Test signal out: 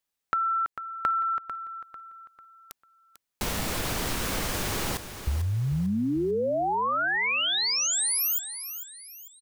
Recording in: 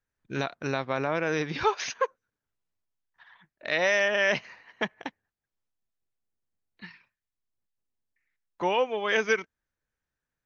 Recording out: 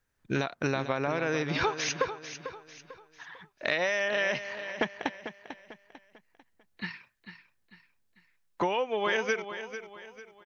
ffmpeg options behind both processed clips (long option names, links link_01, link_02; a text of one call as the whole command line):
ffmpeg -i in.wav -filter_complex "[0:a]acompressor=threshold=-33dB:ratio=12,asplit=2[link_01][link_02];[link_02]aecho=0:1:446|892|1338|1784:0.282|0.107|0.0407|0.0155[link_03];[link_01][link_03]amix=inputs=2:normalize=0,volume=8dB" out.wav